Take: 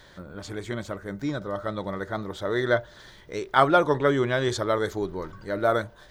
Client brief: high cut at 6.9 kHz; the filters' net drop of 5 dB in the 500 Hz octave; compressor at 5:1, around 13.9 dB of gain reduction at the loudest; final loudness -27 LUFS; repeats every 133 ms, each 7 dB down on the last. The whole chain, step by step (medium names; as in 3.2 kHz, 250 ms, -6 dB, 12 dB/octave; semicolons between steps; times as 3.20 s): low-pass 6.9 kHz; peaking EQ 500 Hz -6.5 dB; compression 5:1, threshold -31 dBFS; feedback delay 133 ms, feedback 45%, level -7 dB; trim +8.5 dB